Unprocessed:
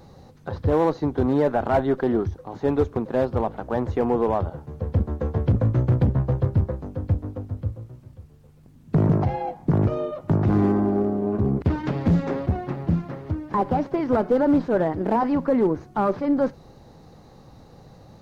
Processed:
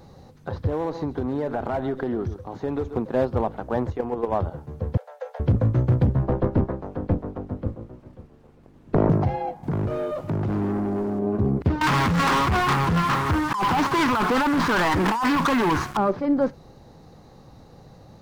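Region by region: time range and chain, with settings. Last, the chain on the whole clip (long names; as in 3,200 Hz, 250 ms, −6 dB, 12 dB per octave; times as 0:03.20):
0:00.67–0:02.97: single-tap delay 132 ms −16.5 dB + downward compressor, threshold −22 dBFS
0:03.90–0:04.32: parametric band 190 Hz −5 dB 0.59 octaves + output level in coarse steps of 10 dB
0:04.97–0:05.40: Butterworth high-pass 500 Hz 96 dB per octave + parametric band 1,100 Hz −12.5 dB 0.2 octaves
0:06.22–0:09.09: ceiling on every frequency bin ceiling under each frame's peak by 16 dB + low-pass filter 1,400 Hz 6 dB per octave
0:09.63–0:11.19: downward compressor 2 to 1, threshold −33 dBFS + leveller curve on the samples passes 2
0:11.81–0:15.97: low shelf with overshoot 790 Hz −10 dB, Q 3 + compressor whose output falls as the input rises −33 dBFS + leveller curve on the samples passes 5
whole clip: no processing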